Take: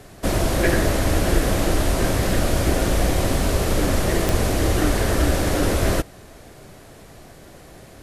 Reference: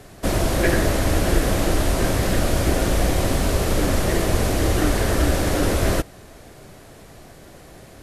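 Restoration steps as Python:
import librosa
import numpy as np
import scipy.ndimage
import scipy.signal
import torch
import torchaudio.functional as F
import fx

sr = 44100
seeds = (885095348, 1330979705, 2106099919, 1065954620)

y = fx.fix_declick_ar(x, sr, threshold=10.0)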